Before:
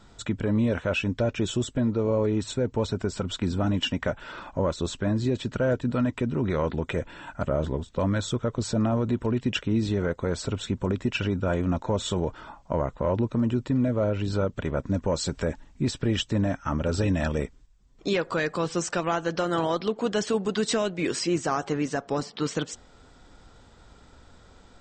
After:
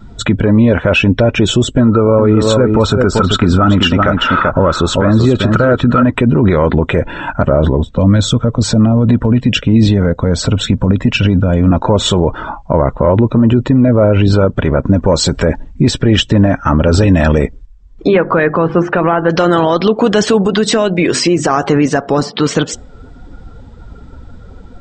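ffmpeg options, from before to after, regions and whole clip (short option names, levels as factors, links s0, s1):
-filter_complex "[0:a]asettb=1/sr,asplit=3[s0][s1][s2];[s0]atrim=end=1.804[s3];[s1]atrim=start=1.8:end=6.03,asetpts=PTS-STARTPTS,afade=t=in:d=0.004:c=qsin,afade=t=out:st=4.226:d=0.004:c=qsin,equalizer=f=1300:t=o:w=0.21:g=15,aecho=1:1:386:0.398,atrim=end_sample=186543[s4];[s2]atrim=start=6.026[s5];[s3][s4]acrossfade=d=0.004:c1=hsin:c2=qsin[s6];[s6][s5]acrossfade=d=0.004:c1=qsin:c2=hsin,asettb=1/sr,asplit=3[s7][s8][s9];[s7]atrim=end=7.824[s10];[s8]atrim=start=7.82:end=11.71,asetpts=PTS-STARTPTS,afade=t=in:d=0.004:c=qsin,afade=t=out:st=3.886:d=0.004:c=qsin,equalizer=f=370:t=o:w=0.23:g=-12,acrossover=split=460|3000[s11][s12][s13];[s12]acompressor=threshold=0.01:ratio=4:attack=3.2:release=140:knee=2.83:detection=peak[s14];[s11][s14][s13]amix=inputs=3:normalize=0[s15];[s9]atrim=start=11.706[s16];[s10][s15]acrossfade=d=0.004:c1=hsin:c2=qsin[s17];[s17][s16]acrossfade=d=0.004:c1=qsin:c2=hsin,asettb=1/sr,asplit=3[s18][s19][s20];[s18]atrim=end=18.074[s21];[s19]atrim=start=18.07:end=19.3,asetpts=PTS-STARTPTS,afade=t=in:d=0.004:c=qsin,afade=t=out:st=1.226:d=0.004:c=qsin,lowpass=2000,bandreject=f=50:t=h:w=6,bandreject=f=100:t=h:w=6,bandreject=f=150:t=h:w=6,bandreject=f=200:t=h:w=6,bandreject=f=250:t=h:w=6,bandreject=f=300:t=h:w=6,bandreject=f=350:t=h:w=6[s22];[s20]atrim=start=19.296[s23];[s21][s22]acrossfade=d=0.004:c1=hsin:c2=qsin[s24];[s24][s23]acrossfade=d=0.004:c1=qsin:c2=hsin,asettb=1/sr,asplit=3[s25][s26][s27];[s25]atrim=end=20.424[s28];[s26]atrim=start=20.42:end=21.5,asetpts=PTS-STARTPTS,afade=t=in:d=0.004:c=qsin,afade=t=out:st=1.076:d=0.004:c=qsin,bandreject=f=50:t=h:w=6,bandreject=f=100:t=h:w=6,bandreject=f=150:t=h:w=6,bandreject=f=200:t=h:w=6,bandreject=f=250:t=h:w=6,bandreject=f=300:t=h:w=6,acompressor=threshold=0.0447:ratio=10:attack=3.2:release=140:knee=1:detection=peak[s29];[s27]atrim=start=21.496[s30];[s28][s29]acrossfade=d=0.004:c1=hsin:c2=qsin[s31];[s31][s30]acrossfade=d=0.004:c1=qsin:c2=hsin,afftdn=nr=15:nf=-48,lowpass=f=4000:p=1,alimiter=level_in=12.6:limit=0.891:release=50:level=0:latency=1,volume=0.891"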